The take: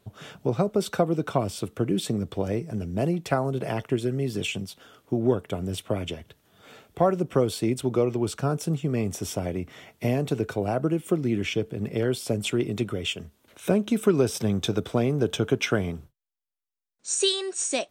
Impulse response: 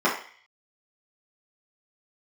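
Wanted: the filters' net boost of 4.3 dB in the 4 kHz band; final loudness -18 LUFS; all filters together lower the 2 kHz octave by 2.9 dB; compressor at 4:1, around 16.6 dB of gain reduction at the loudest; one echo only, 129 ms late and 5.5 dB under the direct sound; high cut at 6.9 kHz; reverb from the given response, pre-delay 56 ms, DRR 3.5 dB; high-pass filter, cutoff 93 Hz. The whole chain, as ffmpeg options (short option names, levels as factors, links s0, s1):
-filter_complex "[0:a]highpass=93,lowpass=6900,equalizer=f=2000:t=o:g=-7,equalizer=f=4000:t=o:g=8,acompressor=threshold=0.0141:ratio=4,aecho=1:1:129:0.531,asplit=2[s0][s1];[1:a]atrim=start_sample=2205,adelay=56[s2];[s1][s2]afir=irnorm=-1:irlink=0,volume=0.0944[s3];[s0][s3]amix=inputs=2:normalize=0,volume=8.91"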